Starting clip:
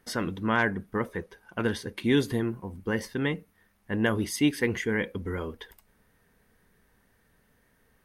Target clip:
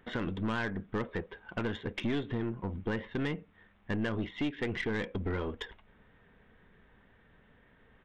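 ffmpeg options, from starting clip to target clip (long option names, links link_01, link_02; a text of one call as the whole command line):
ffmpeg -i in.wav -af "acompressor=threshold=-34dB:ratio=4,aresample=8000,asoftclip=type=tanh:threshold=-32.5dB,aresample=44100,aeval=exprs='0.0335*(cos(1*acos(clip(val(0)/0.0335,-1,1)))-cos(1*PI/2))+0.00266*(cos(3*acos(clip(val(0)/0.0335,-1,1)))-cos(3*PI/2))+0.00266*(cos(4*acos(clip(val(0)/0.0335,-1,1)))-cos(4*PI/2))+0.000237*(cos(7*acos(clip(val(0)/0.0335,-1,1)))-cos(7*PI/2))':channel_layout=same,volume=7dB" out.wav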